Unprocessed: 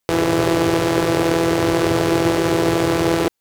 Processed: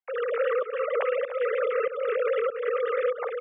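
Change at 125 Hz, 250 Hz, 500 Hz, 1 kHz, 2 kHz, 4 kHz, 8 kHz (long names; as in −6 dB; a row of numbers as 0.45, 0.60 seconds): below −40 dB, below −40 dB, −5.5 dB, −11.0 dB, −9.5 dB, below −20 dB, below −40 dB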